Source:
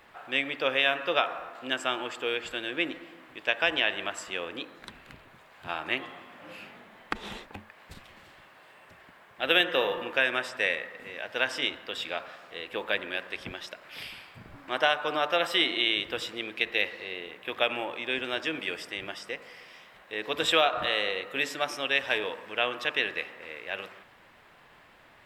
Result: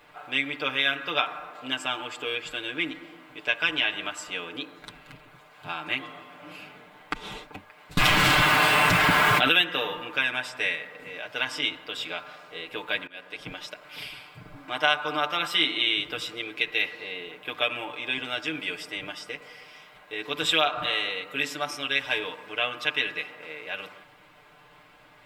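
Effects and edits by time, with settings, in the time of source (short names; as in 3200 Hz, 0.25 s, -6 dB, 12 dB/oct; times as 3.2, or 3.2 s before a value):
7.97–9.52 fast leveller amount 100%
13.07–13.67 fade in equal-power, from -23.5 dB
whole clip: notch 1800 Hz, Q 13; comb 6.7 ms, depth 83%; dynamic EQ 540 Hz, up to -7 dB, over -40 dBFS, Q 1.1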